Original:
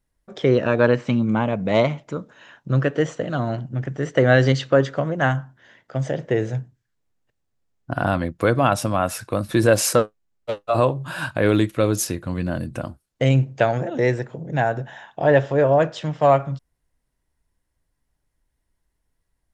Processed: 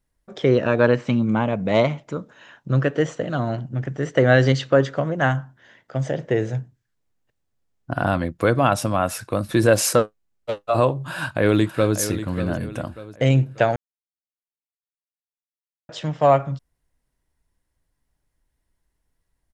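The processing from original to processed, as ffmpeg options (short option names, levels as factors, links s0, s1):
-filter_complex "[0:a]asplit=2[s0][s1];[s1]afade=t=in:st=10.99:d=0.01,afade=t=out:st=11.97:d=0.01,aecho=0:1:590|1180|1770|2360:0.281838|0.112735|0.0450941|0.0180377[s2];[s0][s2]amix=inputs=2:normalize=0,asplit=3[s3][s4][s5];[s3]atrim=end=13.76,asetpts=PTS-STARTPTS,afade=t=out:st=13.756:d=0.004:c=hsin[s6];[s4]atrim=start=13.76:end=15.89,asetpts=PTS-STARTPTS,volume=0[s7];[s5]atrim=start=15.89,asetpts=PTS-STARTPTS,afade=t=in:d=0.004:c=hsin[s8];[s6][s7][s8]concat=n=3:v=0:a=1"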